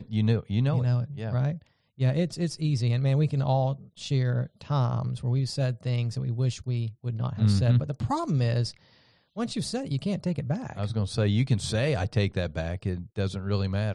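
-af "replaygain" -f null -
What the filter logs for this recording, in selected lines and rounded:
track_gain = +10.1 dB
track_peak = 0.171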